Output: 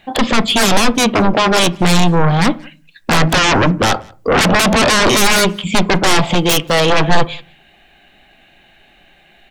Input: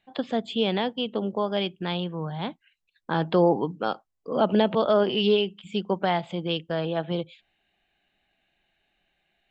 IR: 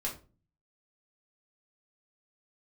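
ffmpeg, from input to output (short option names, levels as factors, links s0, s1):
-filter_complex "[0:a]asettb=1/sr,asplit=3[s0][s1][s2];[s0]atrim=end=6.354[s3];[s1]atrim=start=6.35:end=6.9,asetpts=PTS-STARTPTS,afade=t=in:d=0.004:c=qsin,afade=t=out:st=0.546:d=0.004:c=qsin,tiltshelf=f=1200:g=-6[s4];[s2]atrim=start=6.896[s5];[s3][s4]acrossfade=d=0.004:c1=hsin:c2=qsin[s6];[s6][s5]acrossfade=d=0.004:c1=qsin:c2=hsin,aeval=exprs='0.335*sin(PI/2*8.91*val(0)/0.335)':c=same,asplit=2[s7][s8];[s8]adelay=180.8,volume=0.0447,highshelf=f=4000:g=-4.07[s9];[s7][s9]amix=inputs=2:normalize=0,asplit=2[s10][s11];[1:a]atrim=start_sample=2205,lowpass=2500[s12];[s11][s12]afir=irnorm=-1:irlink=0,volume=0.211[s13];[s10][s13]amix=inputs=2:normalize=0"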